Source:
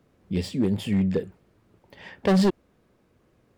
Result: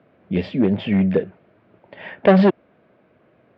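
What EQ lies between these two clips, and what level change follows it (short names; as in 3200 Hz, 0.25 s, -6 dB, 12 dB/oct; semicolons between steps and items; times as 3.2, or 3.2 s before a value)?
speaker cabinet 130–3200 Hz, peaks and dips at 640 Hz +9 dB, 1500 Hz +4 dB, 2300 Hz +3 dB; +6.0 dB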